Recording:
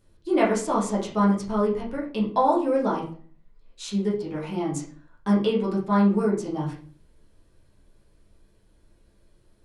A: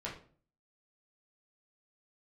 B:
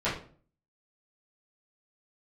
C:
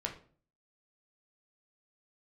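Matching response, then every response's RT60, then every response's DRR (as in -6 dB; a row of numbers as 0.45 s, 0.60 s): A; 0.45 s, 0.45 s, 0.45 s; -6.0 dB, -12.0 dB, 0.5 dB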